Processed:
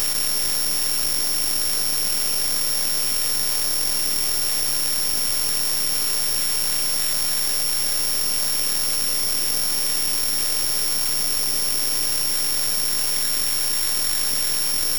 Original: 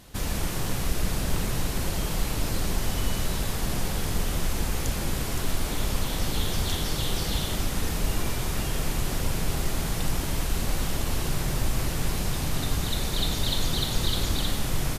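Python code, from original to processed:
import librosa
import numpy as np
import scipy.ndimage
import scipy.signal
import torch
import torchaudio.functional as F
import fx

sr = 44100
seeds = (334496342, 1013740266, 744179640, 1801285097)

y = scipy.signal.sosfilt(scipy.signal.butter(2, 140.0, 'highpass', fs=sr, output='sos'), x)
y = fx.peak_eq(y, sr, hz=980.0, db=-6.0, octaves=0.77)
y = np.abs(y)
y = fx.doubler(y, sr, ms=20.0, db=-2.5)
y = (np.kron(y[::8], np.eye(8)[0]) * 8)[:len(y)]
y = fx.env_flatten(y, sr, amount_pct=100)
y = y * librosa.db_to_amplitude(-7.5)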